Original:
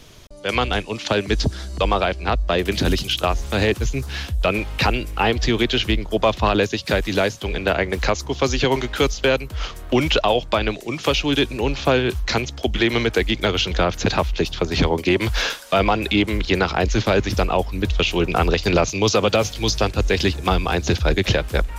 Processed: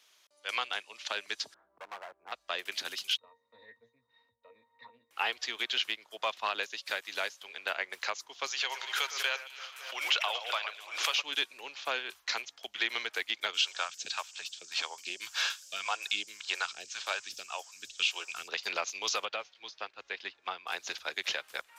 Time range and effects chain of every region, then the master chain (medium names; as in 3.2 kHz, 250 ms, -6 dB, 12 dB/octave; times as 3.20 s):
1.54–2.32 s: low-pass 1.1 kHz 24 dB/octave + hard clipper -20 dBFS
3.17–5.11 s: tilt shelf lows +6 dB, about 1.4 kHz + pitch-class resonator A#, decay 0.16 s + loudspeaker Doppler distortion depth 0.13 ms
8.47–11.22 s: high-pass 590 Hz + echo whose repeats swap between lows and highs 113 ms, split 2.4 kHz, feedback 74%, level -8.5 dB + swell ahead of each attack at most 59 dB/s
13.53–18.47 s: phase shifter stages 2, 1.8 Hz, lowest notch 160–1100 Hz + band noise 4.8–7.9 kHz -40 dBFS + band-stop 2 kHz, Q 7.2
19.25–20.67 s: distance through air 190 m + upward expansion, over -28 dBFS
whole clip: high-pass 1.1 kHz 12 dB/octave; upward expansion 1.5:1, over -35 dBFS; trim -6 dB